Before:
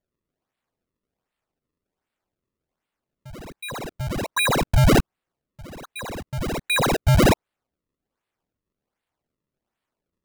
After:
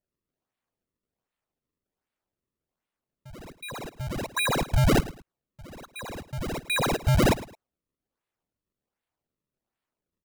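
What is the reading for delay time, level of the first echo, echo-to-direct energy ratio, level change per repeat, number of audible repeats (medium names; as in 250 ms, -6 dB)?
108 ms, -17.0 dB, -16.5 dB, -11.5 dB, 2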